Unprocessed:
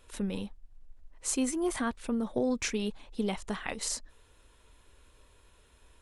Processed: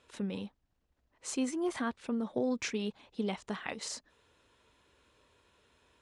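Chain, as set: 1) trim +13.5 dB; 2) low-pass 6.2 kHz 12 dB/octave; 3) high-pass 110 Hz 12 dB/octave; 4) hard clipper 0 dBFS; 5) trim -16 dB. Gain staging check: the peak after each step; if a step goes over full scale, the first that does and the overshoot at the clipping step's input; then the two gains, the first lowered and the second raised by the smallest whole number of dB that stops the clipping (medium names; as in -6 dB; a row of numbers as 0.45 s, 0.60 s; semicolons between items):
-4.0 dBFS, -4.0 dBFS, -4.0 dBFS, -4.0 dBFS, -20.0 dBFS; nothing clips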